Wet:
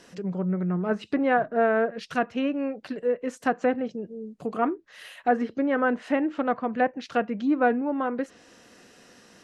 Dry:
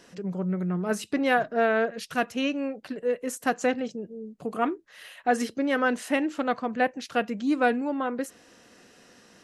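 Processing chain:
treble cut that deepens with the level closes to 1,600 Hz, closed at −23 dBFS
level +1.5 dB

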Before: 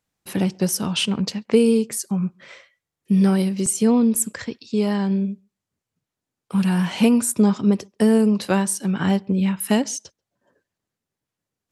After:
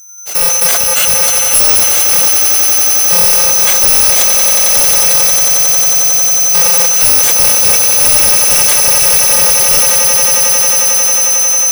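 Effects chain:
samples in bit-reversed order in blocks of 128 samples
high-pass filter 410 Hz 24 dB per octave
in parallel at −5 dB: bit reduction 4 bits
on the sum: steady tone 6,100 Hz −34 dBFS
on a send: echo that builds up and dies away 90 ms, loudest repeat 8, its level −12 dB
on the sum: leveller curve on the samples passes 5
level that may fall only so fast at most 21 dB per second
level −6.5 dB

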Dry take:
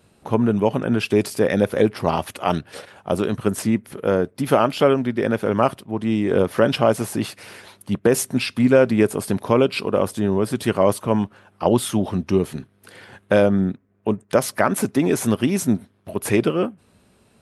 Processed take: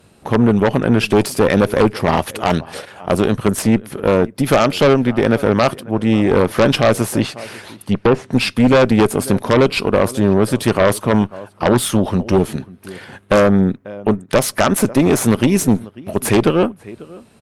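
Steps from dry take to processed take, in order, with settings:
0:07.20–0:08.33: treble cut that deepens with the level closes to 1,700 Hz, closed at −15 dBFS
slap from a distant wall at 93 metres, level −22 dB
harmonic generator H 5 −11 dB, 6 −13 dB, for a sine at −2.5 dBFS
level −1 dB

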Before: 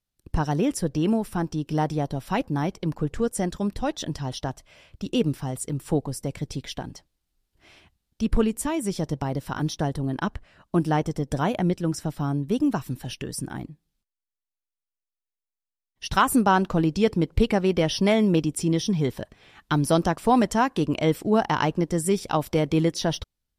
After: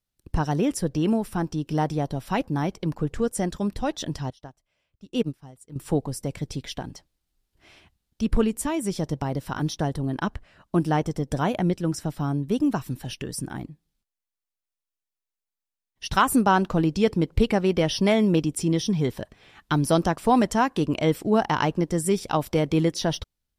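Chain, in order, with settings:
0:04.30–0:05.76: expander for the loud parts 2.5 to 1, over −33 dBFS

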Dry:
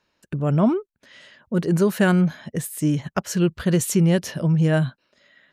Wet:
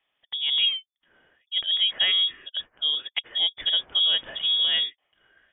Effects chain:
0:04.17–0:04.84: spike at every zero crossing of −19 dBFS
voice inversion scrambler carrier 3,500 Hz
0:00.67–0:01.57: expander for the loud parts 1.5 to 1, over −32 dBFS
level −5 dB

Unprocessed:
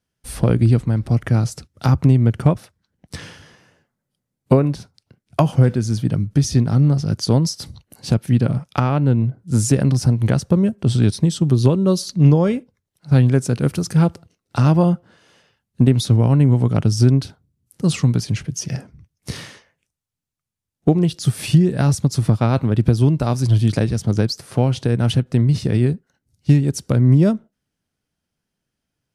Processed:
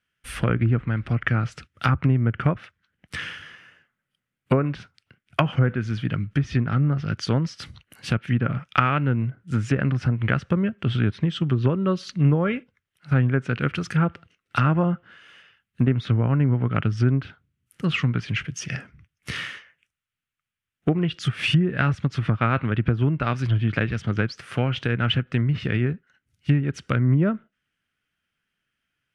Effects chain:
treble cut that deepens with the level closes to 1,300 Hz, closed at −10 dBFS
flat-topped bell 2,000 Hz +14.5 dB
level −6.5 dB

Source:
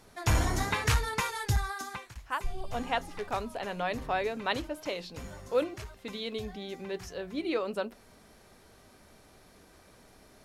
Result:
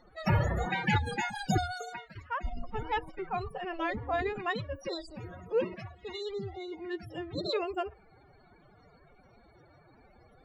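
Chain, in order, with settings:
spectral peaks only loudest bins 64
phase-vocoder pitch shift with formants kept +10.5 semitones

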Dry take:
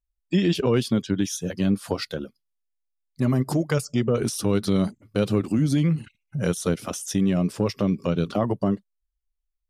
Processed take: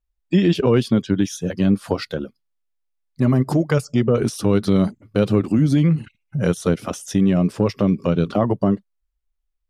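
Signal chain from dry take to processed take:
high-shelf EQ 3,900 Hz −9 dB
level +5 dB

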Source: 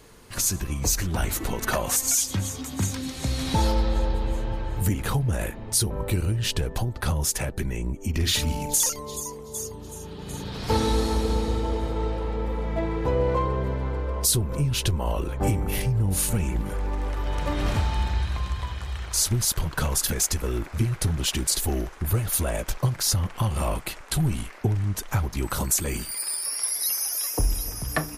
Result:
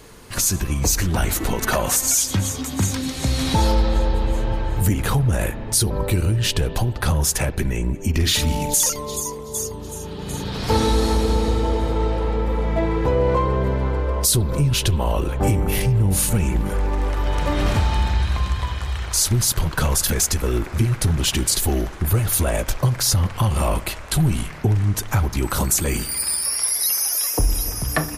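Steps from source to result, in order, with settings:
in parallel at +1 dB: brickwall limiter −18.5 dBFS, peak gain reduction 9 dB
on the sum: convolution reverb RT60 2.3 s, pre-delay 56 ms, DRR 17 dB

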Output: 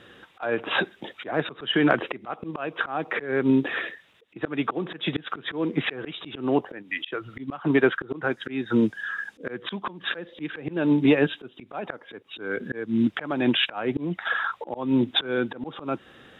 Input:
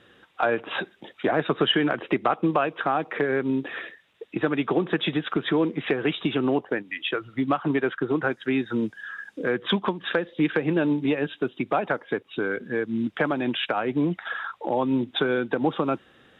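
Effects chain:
volume swells 299 ms
level +5.5 dB

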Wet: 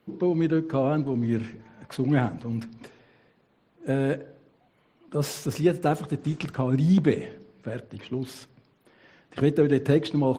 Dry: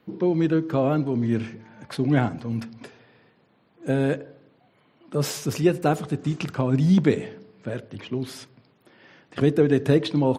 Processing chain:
level −2 dB
Opus 20 kbit/s 48,000 Hz

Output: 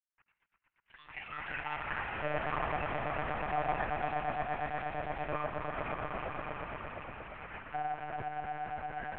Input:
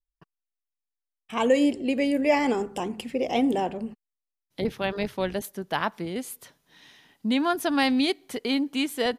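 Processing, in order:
running median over 41 samples
reversed playback
downward compressor, threshold −33 dBFS, peak gain reduction 15 dB
reversed playback
granular cloud
auto-filter high-pass square 0.71 Hz 790–1,600 Hz
on a send at −12.5 dB: convolution reverb RT60 0.45 s, pre-delay 68 ms
on the sum: delay with pitch and tempo change per echo 165 ms, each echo +7 semitones, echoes 3
echo that builds up and dies away 117 ms, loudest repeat 5, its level −6 dB
single-sideband voice off tune −55 Hz 160–2,800 Hz
one-pitch LPC vocoder at 8 kHz 150 Hz

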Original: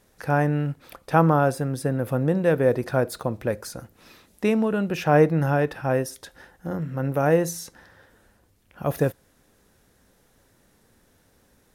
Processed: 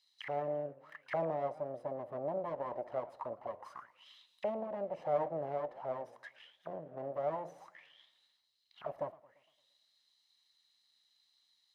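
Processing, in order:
lower of the sound and its delayed copy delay 1 ms
in parallel at −2 dB: downward compressor, threshold −31 dBFS, peak gain reduction 14.5 dB
on the sum: envelope filter 580–4,300 Hz, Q 9.1, down, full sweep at −24.5 dBFS
feedback echo with a swinging delay time 115 ms, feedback 48%, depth 219 cents, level −20 dB
level +1.5 dB

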